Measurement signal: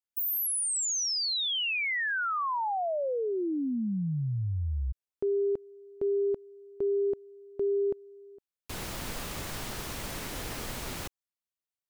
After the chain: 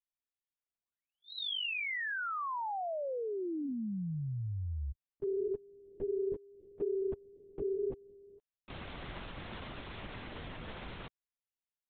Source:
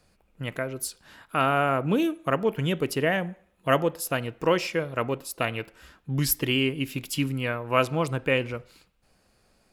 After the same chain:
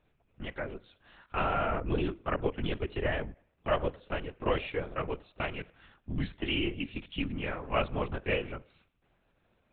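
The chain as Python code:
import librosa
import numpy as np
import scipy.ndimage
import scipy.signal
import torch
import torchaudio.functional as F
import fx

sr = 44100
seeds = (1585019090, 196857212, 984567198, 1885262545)

y = fx.lpc_vocoder(x, sr, seeds[0], excitation='whisper', order=10)
y = F.gain(torch.from_numpy(y), -6.5).numpy()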